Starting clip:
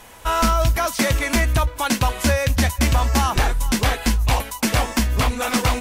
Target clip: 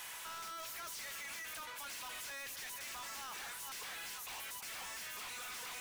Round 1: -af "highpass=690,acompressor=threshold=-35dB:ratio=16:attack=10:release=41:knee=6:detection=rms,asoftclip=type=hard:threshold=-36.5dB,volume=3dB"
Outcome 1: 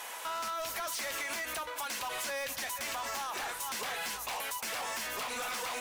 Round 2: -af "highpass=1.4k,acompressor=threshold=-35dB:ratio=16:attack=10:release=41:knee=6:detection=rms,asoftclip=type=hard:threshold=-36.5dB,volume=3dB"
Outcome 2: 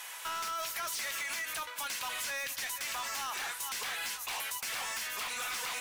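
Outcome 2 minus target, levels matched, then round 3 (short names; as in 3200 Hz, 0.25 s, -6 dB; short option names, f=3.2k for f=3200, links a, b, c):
hard clip: distortion -6 dB
-af "highpass=1.4k,acompressor=threshold=-35dB:ratio=16:attack=10:release=41:knee=6:detection=rms,asoftclip=type=hard:threshold=-48dB,volume=3dB"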